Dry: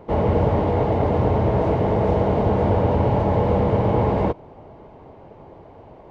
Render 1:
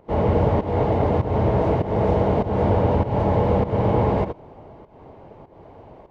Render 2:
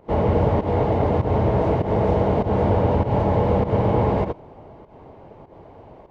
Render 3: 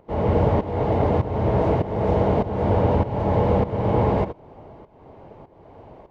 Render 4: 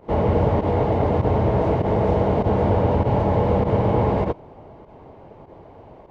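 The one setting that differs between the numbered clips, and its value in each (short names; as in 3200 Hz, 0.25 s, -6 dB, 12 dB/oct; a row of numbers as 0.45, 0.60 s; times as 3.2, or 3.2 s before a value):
pump, release: 246, 147, 465, 66 ms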